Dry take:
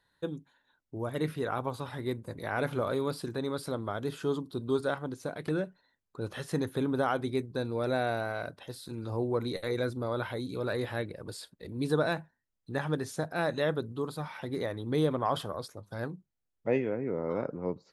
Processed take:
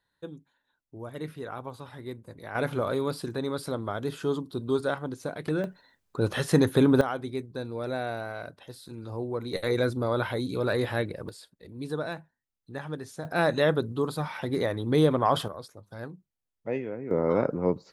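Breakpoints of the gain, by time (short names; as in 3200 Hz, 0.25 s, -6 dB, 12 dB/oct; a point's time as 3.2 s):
-5 dB
from 2.55 s +2.5 dB
from 5.64 s +10 dB
from 7.01 s -2 dB
from 9.53 s +5.5 dB
from 11.29 s -4.5 dB
from 13.25 s +6 dB
from 15.48 s -3 dB
from 17.11 s +8 dB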